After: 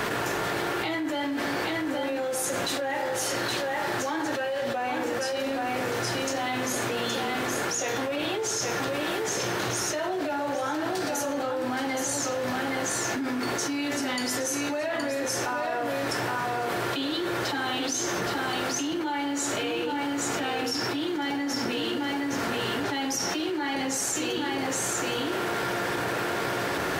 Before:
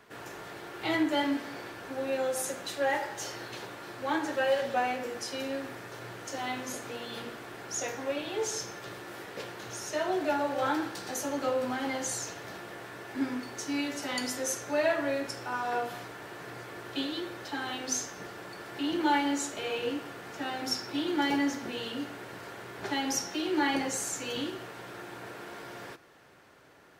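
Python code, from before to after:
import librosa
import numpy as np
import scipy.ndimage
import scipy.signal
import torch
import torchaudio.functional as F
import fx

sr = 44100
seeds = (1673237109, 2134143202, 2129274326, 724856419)

y = x + 10.0 ** (-6.5 / 20.0) * np.pad(x, (int(819 * sr / 1000.0), 0))[:len(x)]
y = fx.env_flatten(y, sr, amount_pct=100)
y = F.gain(torch.from_numpy(y), -6.0).numpy()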